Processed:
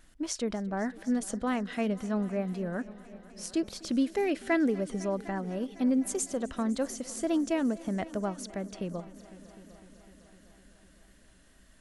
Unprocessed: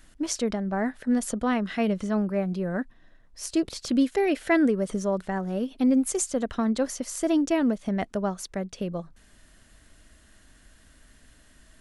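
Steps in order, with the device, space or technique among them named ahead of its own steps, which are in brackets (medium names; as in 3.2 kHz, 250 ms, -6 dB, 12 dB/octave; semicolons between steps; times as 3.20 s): multi-head tape echo (multi-head delay 252 ms, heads all three, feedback 58%, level -23 dB; wow and flutter 23 cents); trim -5 dB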